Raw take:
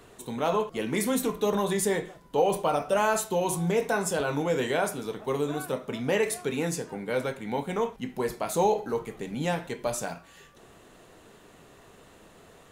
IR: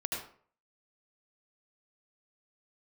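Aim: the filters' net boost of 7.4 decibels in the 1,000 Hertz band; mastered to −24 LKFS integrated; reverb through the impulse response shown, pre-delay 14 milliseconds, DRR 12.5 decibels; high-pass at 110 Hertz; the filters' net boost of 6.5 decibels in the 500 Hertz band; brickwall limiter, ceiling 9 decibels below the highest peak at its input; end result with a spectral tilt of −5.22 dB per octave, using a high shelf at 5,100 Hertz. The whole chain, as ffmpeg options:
-filter_complex "[0:a]highpass=110,equalizer=frequency=500:width_type=o:gain=6,equalizer=frequency=1000:width_type=o:gain=7.5,highshelf=frequency=5100:gain=-6.5,alimiter=limit=-15dB:level=0:latency=1,asplit=2[link_01][link_02];[1:a]atrim=start_sample=2205,adelay=14[link_03];[link_02][link_03]afir=irnorm=-1:irlink=0,volume=-16.5dB[link_04];[link_01][link_04]amix=inputs=2:normalize=0,volume=2dB"

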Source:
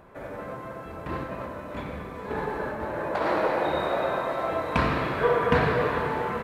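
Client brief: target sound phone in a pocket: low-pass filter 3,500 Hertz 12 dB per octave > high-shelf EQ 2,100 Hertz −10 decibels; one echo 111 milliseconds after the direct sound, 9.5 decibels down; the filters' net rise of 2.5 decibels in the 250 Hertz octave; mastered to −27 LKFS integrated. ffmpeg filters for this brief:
ffmpeg -i in.wav -af "lowpass=3500,equalizer=frequency=250:width_type=o:gain=3.5,highshelf=frequency=2100:gain=-10,aecho=1:1:111:0.335,volume=0.5dB" out.wav

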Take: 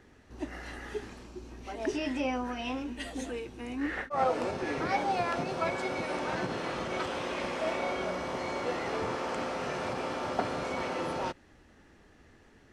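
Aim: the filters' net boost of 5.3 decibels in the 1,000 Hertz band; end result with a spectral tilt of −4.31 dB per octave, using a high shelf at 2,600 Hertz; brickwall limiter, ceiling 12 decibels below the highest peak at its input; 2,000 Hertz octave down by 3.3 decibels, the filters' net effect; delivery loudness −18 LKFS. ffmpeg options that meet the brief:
ffmpeg -i in.wav -af "equalizer=frequency=1000:width_type=o:gain=9,equalizer=frequency=2000:width_type=o:gain=-4.5,highshelf=frequency=2600:gain=-6.5,volume=15dB,alimiter=limit=-7.5dB:level=0:latency=1" out.wav

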